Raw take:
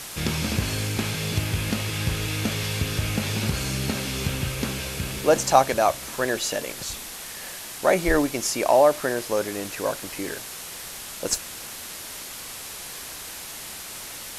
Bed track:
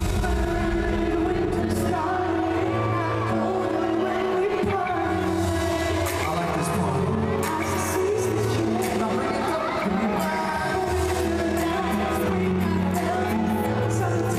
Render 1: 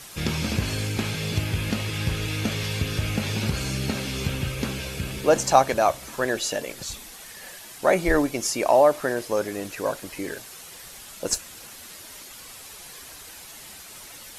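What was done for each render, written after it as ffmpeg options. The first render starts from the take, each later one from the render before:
ffmpeg -i in.wav -af "afftdn=noise_reduction=8:noise_floor=-38" out.wav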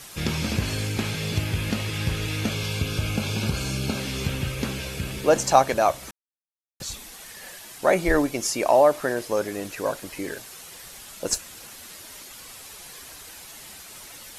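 ffmpeg -i in.wav -filter_complex "[0:a]asettb=1/sr,asplit=3[link_01][link_02][link_03];[link_01]atrim=end=2.494[link_04];[link_02]atrim=start=2.49:end=4,asetpts=PTS-STARTPTS,afade=type=in:duration=0.004:curve=qsin,afade=type=out:start_time=1.506:duration=0.004:curve=qsin,asuperstop=centerf=1900:order=20:qfactor=5.6[link_05];[link_03]atrim=start=3.996[link_06];[link_04][link_05]acrossfade=duration=0.004:curve1=hsin:curve2=qsin[link_07];[link_07][link_06]acrossfade=duration=0.004:curve1=qsin:curve2=hsin,asplit=3[link_08][link_09][link_10];[link_08]atrim=end=6.11,asetpts=PTS-STARTPTS,afade=type=out:start_time=6.106:duration=0.004:curve=hsin[link_11];[link_09]atrim=start=6.11:end=6.8,asetpts=PTS-STARTPTS,volume=0[link_12];[link_10]atrim=start=6.8,asetpts=PTS-STARTPTS,afade=type=in:duration=0.004:curve=hsin[link_13];[link_11][link_12][link_13]concat=n=3:v=0:a=1" out.wav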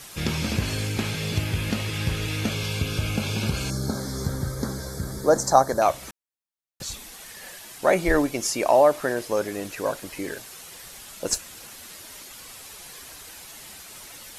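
ffmpeg -i in.wav -filter_complex "[0:a]asettb=1/sr,asplit=3[link_01][link_02][link_03];[link_01]atrim=end=3.704[link_04];[link_02]atrim=start=3.7:end=5.82,asetpts=PTS-STARTPTS,afade=type=in:duration=0.004:curve=qsin,afade=type=out:start_time=2.116:duration=0.004:curve=qsin,asuperstop=centerf=2700:order=4:qfactor=1[link_05];[link_03]atrim=start=5.816[link_06];[link_04][link_05]acrossfade=duration=0.004:curve1=hsin:curve2=qsin[link_07];[link_07][link_06]acrossfade=duration=0.004:curve1=qsin:curve2=hsin" out.wav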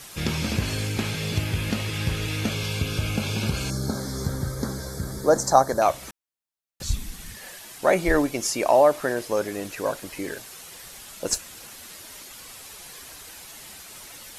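ffmpeg -i in.wav -filter_complex "[0:a]asplit=3[link_01][link_02][link_03];[link_01]afade=type=out:start_time=6.83:duration=0.02[link_04];[link_02]asubboost=boost=10:cutoff=180,afade=type=in:start_time=6.83:duration=0.02,afade=type=out:start_time=7.35:duration=0.02[link_05];[link_03]afade=type=in:start_time=7.35:duration=0.02[link_06];[link_04][link_05][link_06]amix=inputs=3:normalize=0" out.wav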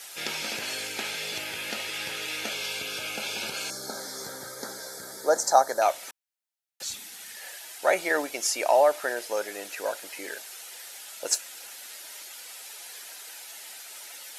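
ffmpeg -i in.wav -af "highpass=610,bandreject=frequency=1100:width=5.1" out.wav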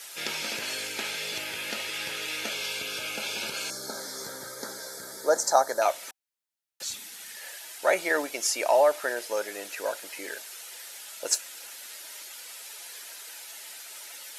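ffmpeg -i in.wav -af "lowshelf=frequency=160:gain=-3,bandreject=frequency=760:width=12" out.wav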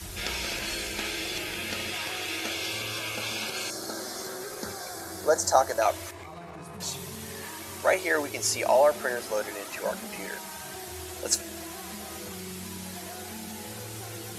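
ffmpeg -i in.wav -i bed.wav -filter_complex "[1:a]volume=-18dB[link_01];[0:a][link_01]amix=inputs=2:normalize=0" out.wav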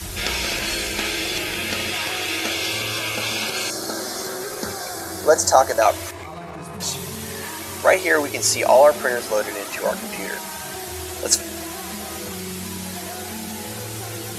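ffmpeg -i in.wav -af "volume=8dB,alimiter=limit=-1dB:level=0:latency=1" out.wav

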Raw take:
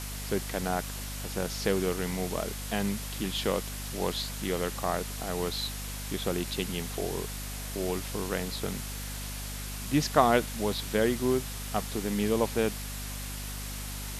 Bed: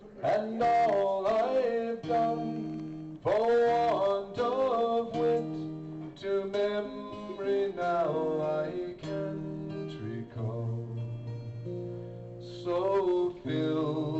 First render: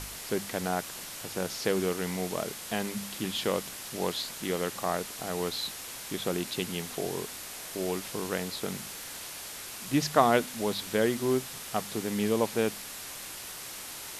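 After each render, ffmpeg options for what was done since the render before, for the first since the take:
ffmpeg -i in.wav -af "bandreject=frequency=50:width_type=h:width=4,bandreject=frequency=100:width_type=h:width=4,bandreject=frequency=150:width_type=h:width=4,bandreject=frequency=200:width_type=h:width=4,bandreject=frequency=250:width_type=h:width=4" out.wav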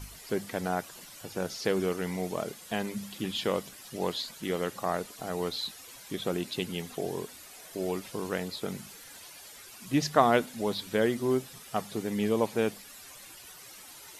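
ffmpeg -i in.wav -af "afftdn=noise_reduction=12:noise_floor=-42" out.wav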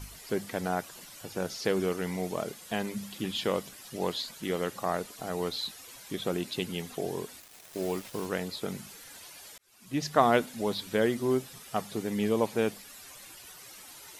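ffmpeg -i in.wav -filter_complex "[0:a]asettb=1/sr,asplit=3[link_01][link_02][link_03];[link_01]atrim=end=7.404[link_04];[link_02]atrim=start=7.4:end=8.26,asetpts=PTS-STARTPTS,afade=type=in:duration=0.004:curve=qsin,afade=type=out:start_time=0.856:duration=0.004:curve=qsin,acrusher=bits=6:mix=0:aa=0.5[link_05];[link_03]atrim=start=8.256[link_06];[link_04][link_05]acrossfade=duration=0.004:curve1=hsin:curve2=qsin[link_07];[link_07][link_06]acrossfade=duration=0.004:curve1=qsin:curve2=hsin,asplit=2[link_08][link_09];[link_08]atrim=end=9.58,asetpts=PTS-STARTPTS,afade=type=out:start_time=9.576:duration=0.004:curve=hsin[link_10];[link_09]atrim=start=9.58,asetpts=PTS-STARTPTS,afade=type=in:duration=0.67[link_11];[link_10][link_11]concat=n=2:v=0:a=1" out.wav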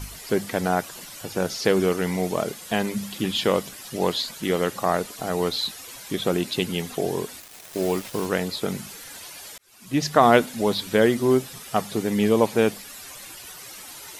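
ffmpeg -i in.wav -af "volume=8dB,alimiter=limit=-3dB:level=0:latency=1" out.wav

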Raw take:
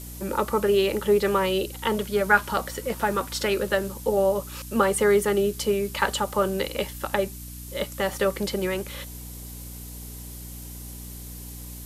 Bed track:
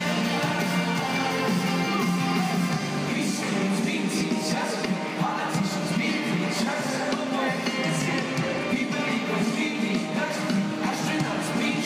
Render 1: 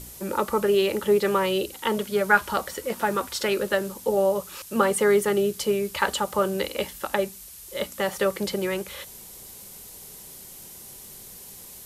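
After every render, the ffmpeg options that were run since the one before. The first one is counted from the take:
ffmpeg -i in.wav -af "bandreject=frequency=60:width_type=h:width=4,bandreject=frequency=120:width_type=h:width=4,bandreject=frequency=180:width_type=h:width=4,bandreject=frequency=240:width_type=h:width=4,bandreject=frequency=300:width_type=h:width=4" out.wav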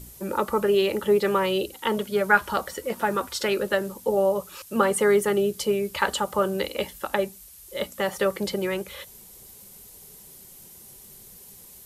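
ffmpeg -i in.wav -af "afftdn=noise_reduction=6:noise_floor=-44" out.wav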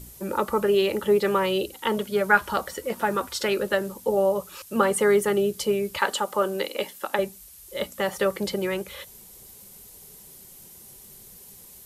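ffmpeg -i in.wav -filter_complex "[0:a]asettb=1/sr,asplit=3[link_01][link_02][link_03];[link_01]atrim=end=5.984[link_04];[link_02]atrim=start=5.98:end=7.19,asetpts=PTS-STARTPTS,afade=type=in:duration=0.004:curve=qsin,afade=type=out:start_time=1.206:duration=0.004:curve=qsin,highpass=240[link_05];[link_03]atrim=start=7.186[link_06];[link_04][link_05]acrossfade=duration=0.004:curve1=hsin:curve2=qsin[link_07];[link_07][link_06]acrossfade=duration=0.004:curve1=qsin:curve2=hsin" out.wav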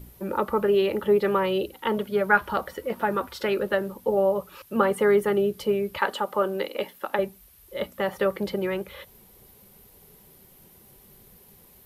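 ffmpeg -i in.wav -af "equalizer=frequency=7500:width_type=o:width=1.5:gain=-15" out.wav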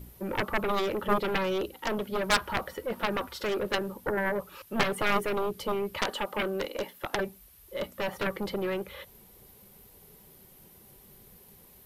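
ffmpeg -i in.wav -af "aeval=exprs='0.596*(cos(1*acos(clip(val(0)/0.596,-1,1)))-cos(1*PI/2))+0.0168*(cos(3*acos(clip(val(0)/0.596,-1,1)))-cos(3*PI/2))+0.0335*(cos(6*acos(clip(val(0)/0.596,-1,1)))-cos(6*PI/2))+0.15*(cos(7*acos(clip(val(0)/0.596,-1,1)))-cos(7*PI/2))':channel_layout=same,asoftclip=type=hard:threshold=-13dB" out.wav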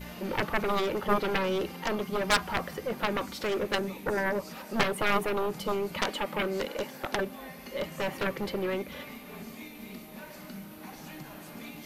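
ffmpeg -i in.wav -i bed.wav -filter_complex "[1:a]volume=-18.5dB[link_01];[0:a][link_01]amix=inputs=2:normalize=0" out.wav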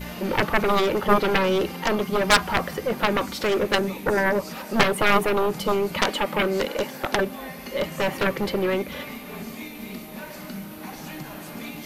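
ffmpeg -i in.wav -af "volume=7.5dB" out.wav

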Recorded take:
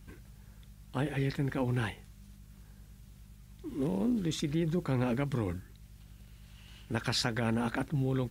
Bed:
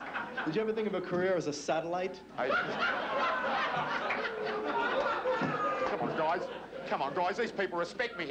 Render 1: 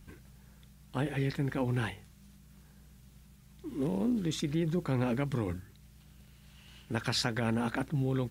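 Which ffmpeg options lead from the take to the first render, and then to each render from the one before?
ffmpeg -i in.wav -af "bandreject=frequency=50:width_type=h:width=4,bandreject=frequency=100:width_type=h:width=4" out.wav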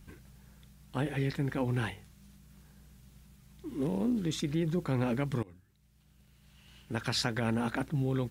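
ffmpeg -i in.wav -filter_complex "[0:a]asplit=2[link_01][link_02];[link_01]atrim=end=5.43,asetpts=PTS-STARTPTS,afade=type=out:start_time=5.426:duration=0.004:curve=hsin:silence=0.0841395[link_03];[link_02]atrim=start=5.43,asetpts=PTS-STARTPTS,afade=type=in:duration=1.81:silence=0.0841395[link_04];[link_03][link_04]concat=n=2:v=0:a=1" out.wav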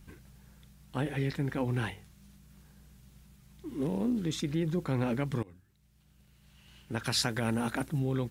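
ffmpeg -i in.wav -filter_complex "[0:a]asettb=1/sr,asplit=3[link_01][link_02][link_03];[link_01]atrim=end=7.044[link_04];[link_02]atrim=start=7.04:end=7.99,asetpts=PTS-STARTPTS,afade=type=in:duration=0.004:curve=qsin,afade=type=out:start_time=0.946:duration=0.004:curve=qsin,equalizer=frequency=11000:width_type=o:width=1.3:gain=8.5[link_05];[link_03]atrim=start=7.986[link_06];[link_04][link_05]acrossfade=duration=0.004:curve1=hsin:curve2=qsin[link_07];[link_07][link_06]acrossfade=duration=0.004:curve1=qsin:curve2=hsin" out.wav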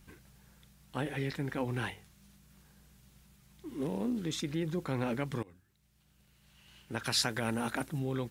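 ffmpeg -i in.wav -af "lowshelf=frequency=290:gain=-6" out.wav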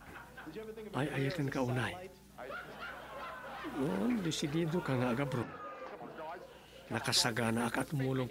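ffmpeg -i in.wav -i bed.wav -filter_complex "[1:a]volume=-14dB[link_01];[0:a][link_01]amix=inputs=2:normalize=0" out.wav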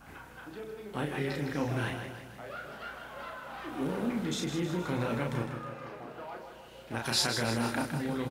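ffmpeg -i in.wav -filter_complex "[0:a]asplit=2[link_01][link_02];[link_02]adelay=34,volume=-4dB[link_03];[link_01][link_03]amix=inputs=2:normalize=0,aecho=1:1:157|314|471|628|785|942|1099:0.398|0.219|0.12|0.0662|0.0364|0.02|0.011" out.wav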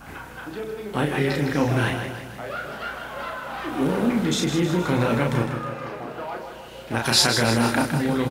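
ffmpeg -i in.wav -af "volume=10.5dB" out.wav

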